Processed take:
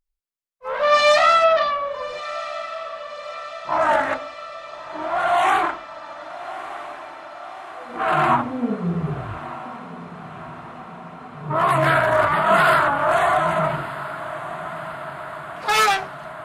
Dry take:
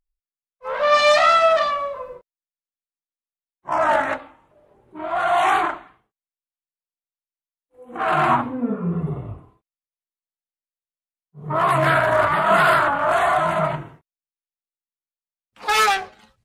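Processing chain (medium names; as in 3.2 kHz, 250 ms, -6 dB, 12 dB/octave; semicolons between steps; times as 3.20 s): 1.44–3.79 s: low-pass 5.4 kHz 24 dB/octave; echo that smears into a reverb 1251 ms, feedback 70%, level -14 dB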